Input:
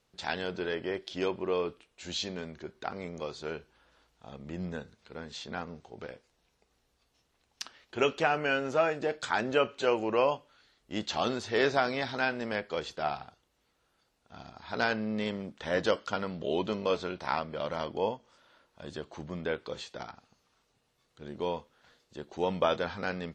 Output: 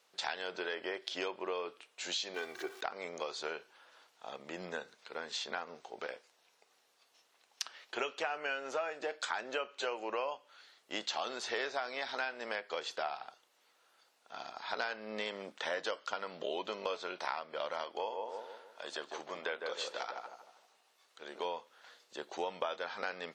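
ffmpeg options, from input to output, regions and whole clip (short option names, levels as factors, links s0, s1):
-filter_complex "[0:a]asettb=1/sr,asplit=3[s0][s1][s2];[s0]atrim=end=2.344[s3];[s1]atrim=start=2.34:end=2.81,asetpts=PTS-STARTPTS,afade=t=in:d=0.004:c=qsin,afade=t=out:st=0.466:d=0.004:c=qsin,aeval=exprs='val(0)+0.5*0.00237*sgn(val(0))':c=same,aecho=1:1:2.6:0.77,atrim=end_sample=20727[s4];[s2]atrim=start=2.806[s5];[s3][s4]acrossfade=d=0.004:c1=hsin:c2=qsin[s6];[s6][s5]acrossfade=d=0.004:c1=qsin:c2=hsin,asettb=1/sr,asplit=3[s7][s8][s9];[s7]atrim=end=17.844[s10];[s8]atrim=start=17.84:end=21.45,asetpts=PTS-STARTPTS,afade=t=in:d=0.004:c=qsin,afade=t=out:st=3.606:d=0.004:c=qsin,equalizer=f=97:t=o:w=2.8:g=-11.5,asplit=2[s11][s12];[s12]adelay=155,lowpass=f=1200:p=1,volume=0.631,asplit=2[s13][s14];[s14]adelay=155,lowpass=f=1200:p=1,volume=0.44,asplit=2[s15][s16];[s16]adelay=155,lowpass=f=1200:p=1,volume=0.44,asplit=2[s17][s18];[s18]adelay=155,lowpass=f=1200:p=1,volume=0.44,asplit=2[s19][s20];[s20]adelay=155,lowpass=f=1200:p=1,volume=0.44,asplit=2[s21][s22];[s22]adelay=155,lowpass=f=1200:p=1,volume=0.44[s23];[s11][s13][s15][s17][s19][s21][s23]amix=inputs=7:normalize=0,atrim=end_sample=159201[s24];[s9]atrim=start=21.446[s25];[s10][s24]acrossfade=d=0.004:c1=hsin:c2=qsin[s26];[s26][s25]acrossfade=d=0.004:c1=qsin:c2=hsin,highpass=570,acompressor=threshold=0.01:ratio=5,volume=1.88"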